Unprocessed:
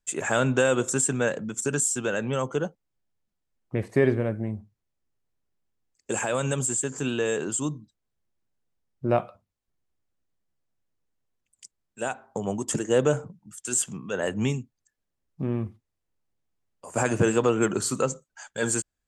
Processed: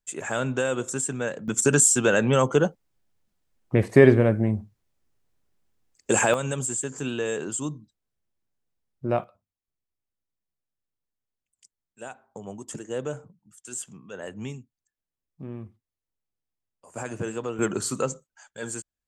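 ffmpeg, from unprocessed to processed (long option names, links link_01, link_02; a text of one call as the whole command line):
ffmpeg -i in.wav -af "asetnsamples=nb_out_samples=441:pad=0,asendcmd='1.48 volume volume 7dB;6.34 volume volume -2dB;9.24 volume volume -9.5dB;17.59 volume volume -1.5dB;18.27 volume volume -8dB',volume=-4dB" out.wav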